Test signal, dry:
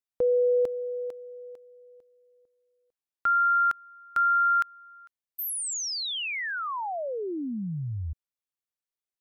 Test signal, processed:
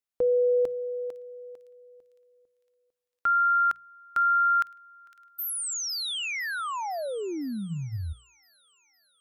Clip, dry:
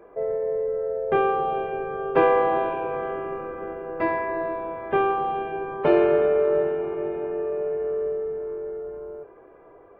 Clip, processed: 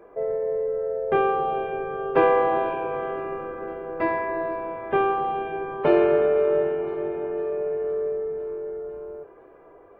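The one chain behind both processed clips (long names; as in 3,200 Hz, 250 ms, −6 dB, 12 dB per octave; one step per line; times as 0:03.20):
mains-hum notches 60/120/180 Hz
delay with a high-pass on its return 507 ms, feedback 61%, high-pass 2,900 Hz, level −15.5 dB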